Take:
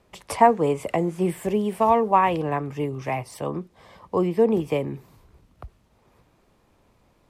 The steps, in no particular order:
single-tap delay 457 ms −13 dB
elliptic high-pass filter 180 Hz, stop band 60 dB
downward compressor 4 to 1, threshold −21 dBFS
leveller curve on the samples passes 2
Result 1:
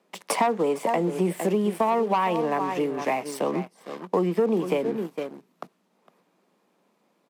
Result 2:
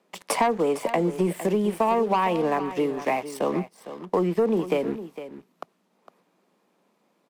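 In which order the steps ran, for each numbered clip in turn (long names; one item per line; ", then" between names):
single-tap delay, then leveller curve on the samples, then downward compressor, then elliptic high-pass filter
elliptic high-pass filter, then leveller curve on the samples, then downward compressor, then single-tap delay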